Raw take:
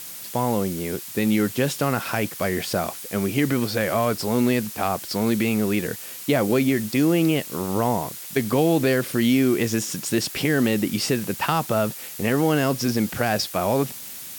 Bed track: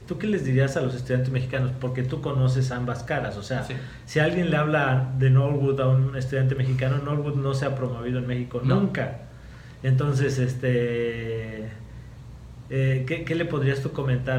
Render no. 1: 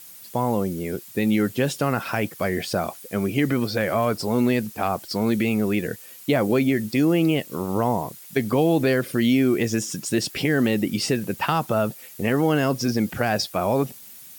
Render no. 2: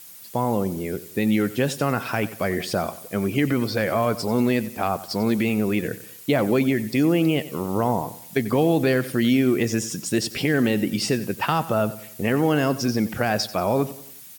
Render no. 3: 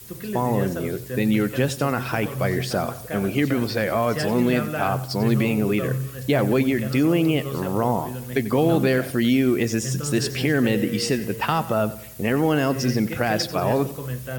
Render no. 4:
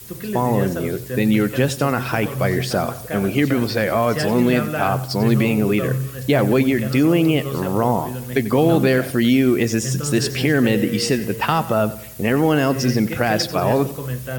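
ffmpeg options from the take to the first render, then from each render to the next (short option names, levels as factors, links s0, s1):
-af "afftdn=nr=10:nf=-37"
-af "aecho=1:1:92|184|276|368:0.15|0.0658|0.029|0.0127"
-filter_complex "[1:a]volume=0.473[s0];[0:a][s0]amix=inputs=2:normalize=0"
-af "volume=1.5"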